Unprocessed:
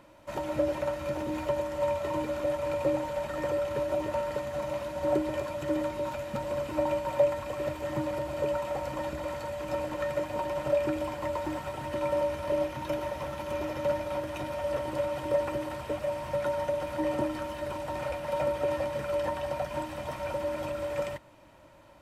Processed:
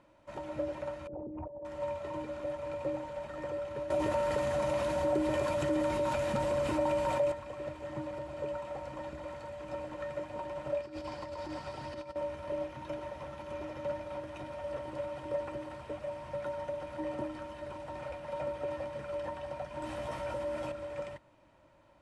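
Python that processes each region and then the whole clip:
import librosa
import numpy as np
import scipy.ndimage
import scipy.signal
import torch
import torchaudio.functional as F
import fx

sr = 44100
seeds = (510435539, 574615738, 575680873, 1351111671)

y = fx.chain(x, sr, fx.envelope_sharpen(power=3.0),
    fx.over_compress(threshold_db=-35.0, ratio=-1.0),
    fx.doppler_dist(depth_ms=0.14), at=(1.07, 1.65))
y = fx.chain(y, sr, fx.high_shelf(hz=7400.0, db=10.5),
    fx.env_flatten(amount_pct=70), at=(3.9, 7.32))
y = fx.chain(y, sr, fx.over_compress(threshold_db=-33.0, ratio=-0.5),
    fx.peak_eq(hz=4800.0, db=13.5, octaves=0.5), at=(10.81, 12.16))
y = fx.chain(y, sr, fx.high_shelf(hz=9300.0, db=7.5),
    fx.doubler(ms=17.0, db=-4.5),
    fx.env_flatten(amount_pct=50), at=(19.82, 20.72))
y = scipy.signal.sosfilt(scipy.signal.butter(8, 11000.0, 'lowpass', fs=sr, output='sos'), y)
y = fx.high_shelf(y, sr, hz=5000.0, db=-7.0)
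y = F.gain(torch.from_numpy(y), -7.5).numpy()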